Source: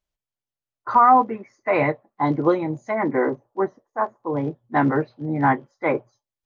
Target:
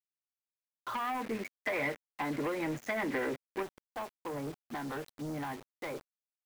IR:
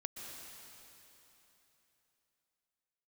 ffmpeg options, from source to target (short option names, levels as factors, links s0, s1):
-filter_complex "[0:a]acrossover=split=120|520[s0][s1][s2];[s0]acompressor=threshold=0.00398:ratio=4[s3];[s1]acompressor=threshold=0.0251:ratio=4[s4];[s2]acompressor=threshold=0.0447:ratio=4[s5];[s3][s4][s5]amix=inputs=3:normalize=0,aemphasis=mode=production:type=cd,acompressor=threshold=0.0355:ratio=16,tremolo=f=92:d=0.261,acrusher=bits=7:mix=0:aa=0.000001,asoftclip=type=tanh:threshold=0.02,asettb=1/sr,asplit=3[s6][s7][s8];[s6]atrim=end=0.954[s9];[s7]atrim=start=0.95:end=3.63,asetpts=PTS-STARTPTS,afade=t=in:d=0.004:c=qsin,afade=t=out:st=2.676:d=0.004:c=qsin,equalizer=f=250:t=o:w=1:g=5,equalizer=f=500:t=o:w=1:g=4,equalizer=f=2000:t=o:w=1:g=10[s10];[s8]atrim=start=3.626[s11];[s9][s10]acrossfade=d=0.004:c1=hsin:c2=qsin[s12];[s12][s11]acrossfade=d=0.004:c1=qsin:c2=hsin"